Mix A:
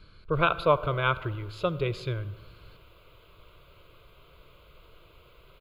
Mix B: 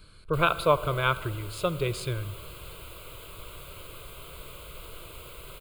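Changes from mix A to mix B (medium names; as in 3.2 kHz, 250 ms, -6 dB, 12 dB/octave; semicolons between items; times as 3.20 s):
background +10.0 dB; master: remove boxcar filter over 5 samples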